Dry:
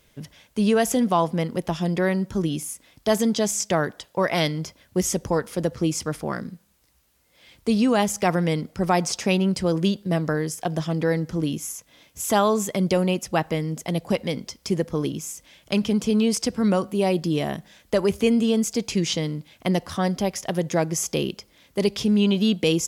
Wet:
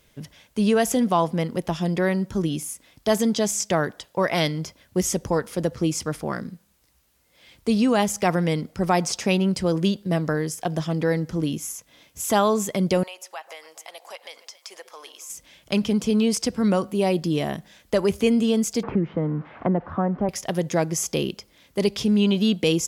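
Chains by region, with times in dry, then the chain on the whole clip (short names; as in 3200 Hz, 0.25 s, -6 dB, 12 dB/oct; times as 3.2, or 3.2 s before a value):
13.03–15.3 HPF 690 Hz 24 dB/oct + compressor 2:1, threshold -40 dBFS + echo with dull and thin repeats by turns 0.139 s, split 960 Hz, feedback 62%, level -13.5 dB
18.83–20.29 switching spikes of -21 dBFS + LPF 1400 Hz 24 dB/oct + three-band squash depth 70%
whole clip: dry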